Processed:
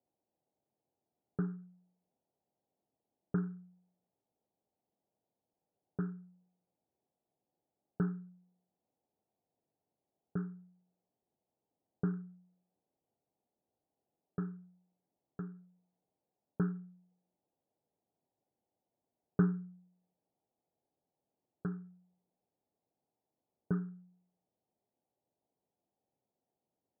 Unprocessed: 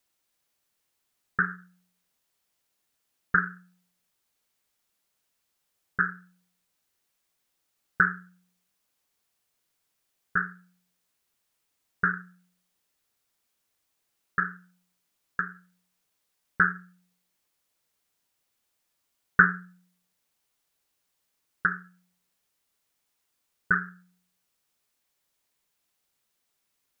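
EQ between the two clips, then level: HPF 100 Hz; elliptic low-pass 800 Hz, stop band 80 dB; +2.5 dB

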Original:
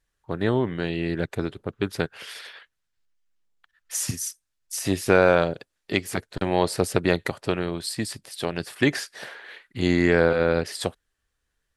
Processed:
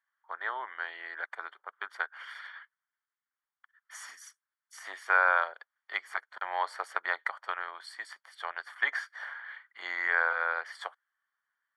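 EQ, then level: polynomial smoothing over 41 samples; HPF 1000 Hz 24 dB/oct; +2.5 dB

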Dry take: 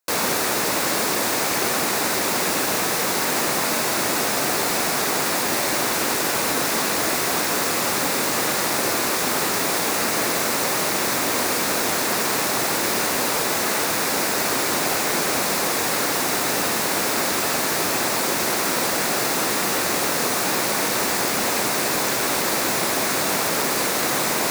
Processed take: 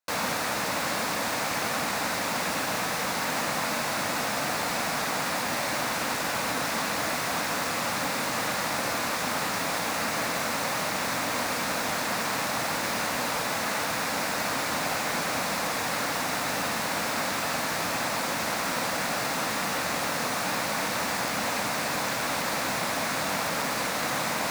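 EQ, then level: bell 380 Hz -13.5 dB 0.45 oct; high shelf 5800 Hz -10 dB; -3.5 dB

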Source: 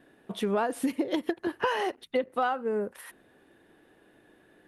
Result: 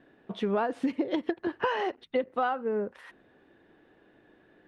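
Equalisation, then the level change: air absorption 150 m; 0.0 dB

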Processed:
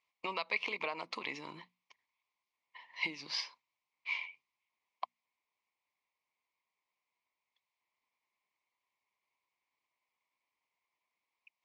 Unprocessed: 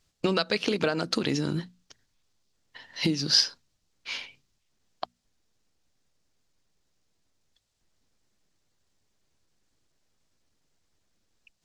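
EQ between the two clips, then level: double band-pass 1500 Hz, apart 1.1 oct; +3.5 dB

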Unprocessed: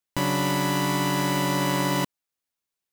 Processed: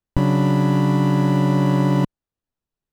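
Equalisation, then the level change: tilt -4 dB/oct; notch 2200 Hz, Q 10; 0.0 dB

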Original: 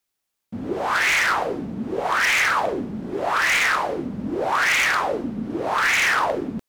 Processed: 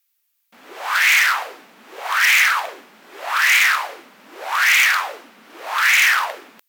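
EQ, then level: HPF 1300 Hz 12 dB/oct; bell 2500 Hz +2 dB; bell 15000 Hz +14.5 dB 0.35 oct; +4.5 dB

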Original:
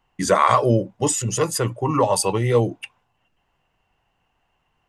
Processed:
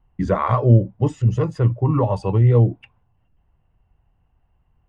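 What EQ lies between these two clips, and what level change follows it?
tape spacing loss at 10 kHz 34 dB; bell 63 Hz +7.5 dB 2.6 oct; low shelf 150 Hz +11.5 dB; -2.5 dB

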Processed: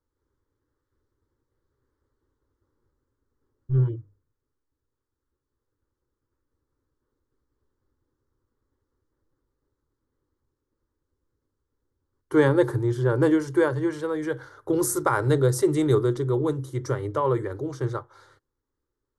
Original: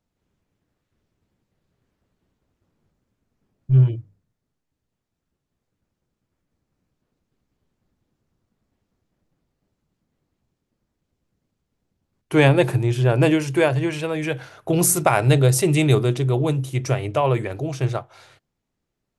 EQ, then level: high shelf 4700 Hz -10.5 dB; fixed phaser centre 690 Hz, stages 6; 0.0 dB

